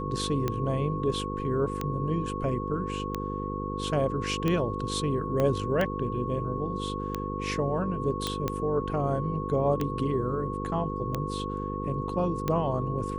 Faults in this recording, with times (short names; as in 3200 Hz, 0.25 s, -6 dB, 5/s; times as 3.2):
buzz 50 Hz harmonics 10 -34 dBFS
tick 45 rpm -15 dBFS
tone 1100 Hz -35 dBFS
5.4 pop -15 dBFS
8.27 pop -14 dBFS